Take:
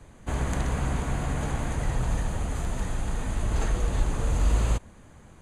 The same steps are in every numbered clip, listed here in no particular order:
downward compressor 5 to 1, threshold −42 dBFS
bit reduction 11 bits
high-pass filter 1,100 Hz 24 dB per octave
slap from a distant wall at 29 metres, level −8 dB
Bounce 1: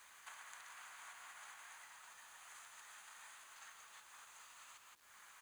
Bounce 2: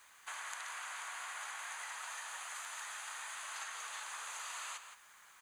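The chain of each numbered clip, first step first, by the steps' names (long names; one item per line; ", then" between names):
slap from a distant wall, then downward compressor, then high-pass filter, then bit reduction
high-pass filter, then bit reduction, then downward compressor, then slap from a distant wall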